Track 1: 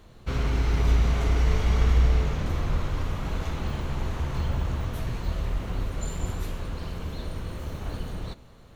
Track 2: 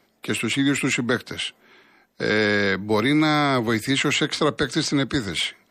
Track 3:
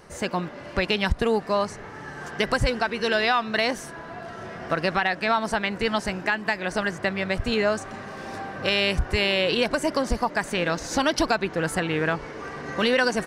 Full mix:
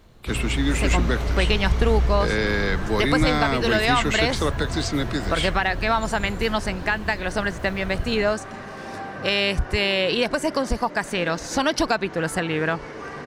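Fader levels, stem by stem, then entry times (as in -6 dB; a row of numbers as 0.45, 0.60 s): -1.0, -3.5, +1.0 dB; 0.00, 0.00, 0.60 s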